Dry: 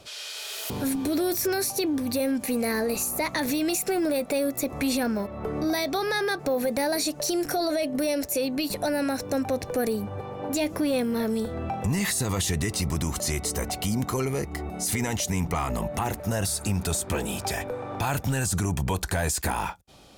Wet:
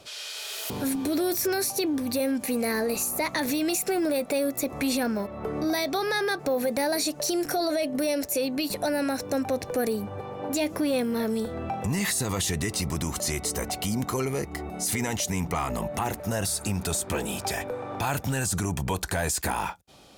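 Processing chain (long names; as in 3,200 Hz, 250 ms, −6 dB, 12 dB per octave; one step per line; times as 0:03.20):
low-shelf EQ 95 Hz −7 dB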